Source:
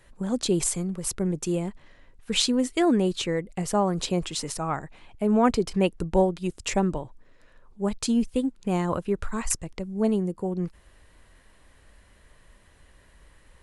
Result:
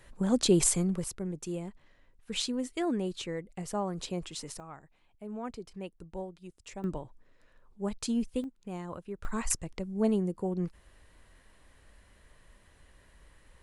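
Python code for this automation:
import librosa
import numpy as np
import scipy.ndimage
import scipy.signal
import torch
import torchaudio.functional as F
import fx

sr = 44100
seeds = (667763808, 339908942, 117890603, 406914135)

y = fx.gain(x, sr, db=fx.steps((0.0, 0.5), (1.04, -9.5), (4.6, -18.5), (6.84, -7.0), (8.44, -14.0), (9.25, -3.5)))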